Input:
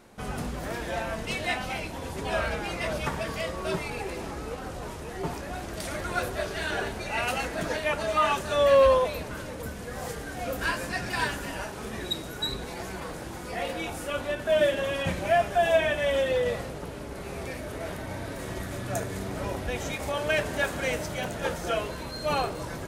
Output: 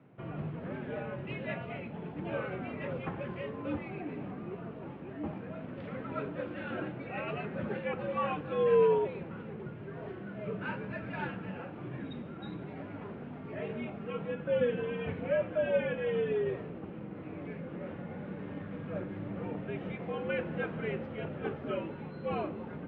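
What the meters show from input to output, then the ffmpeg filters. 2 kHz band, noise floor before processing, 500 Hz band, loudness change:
-11.0 dB, -38 dBFS, -6.0 dB, -7.0 dB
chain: -af "equalizer=f=125:t=o:w=1:g=-10,equalizer=f=250:t=o:w=1:g=10,equalizer=f=1000:t=o:w=1:g=-3,equalizer=f=2000:t=o:w=1:g=-5,highpass=f=180:t=q:w=0.5412,highpass=f=180:t=q:w=1.307,lowpass=f=2800:t=q:w=0.5176,lowpass=f=2800:t=q:w=0.7071,lowpass=f=2800:t=q:w=1.932,afreqshift=-88,volume=0.501"

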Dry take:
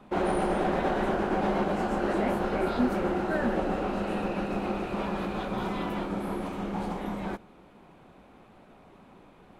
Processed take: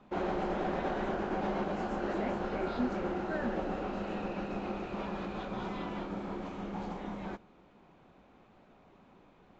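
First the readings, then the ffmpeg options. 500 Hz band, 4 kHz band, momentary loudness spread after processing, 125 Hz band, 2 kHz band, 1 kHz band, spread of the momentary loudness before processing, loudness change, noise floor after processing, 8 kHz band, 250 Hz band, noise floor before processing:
-6.5 dB, -6.5 dB, 7 LU, -6.5 dB, -6.5 dB, -6.5 dB, 7 LU, -6.5 dB, -61 dBFS, no reading, -6.5 dB, -55 dBFS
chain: -af "volume=0.473" -ar 16000 -c:a libvorbis -b:a 96k

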